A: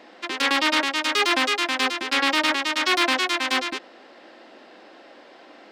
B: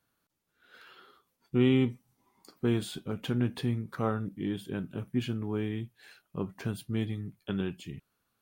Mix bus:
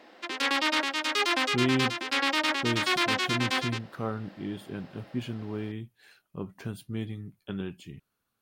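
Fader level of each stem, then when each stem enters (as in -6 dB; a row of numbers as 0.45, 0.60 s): -5.5, -2.5 dB; 0.00, 0.00 s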